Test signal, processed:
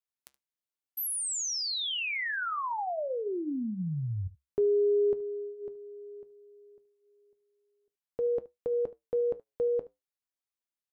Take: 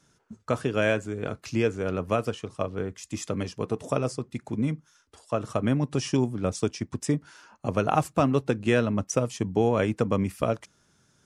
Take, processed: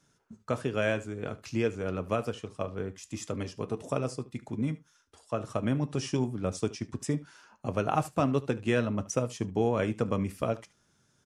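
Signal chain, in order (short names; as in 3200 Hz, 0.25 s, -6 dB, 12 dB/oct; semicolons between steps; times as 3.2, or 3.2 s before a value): flange 0.24 Hz, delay 7 ms, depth 2.3 ms, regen -76%; echo 74 ms -19.5 dB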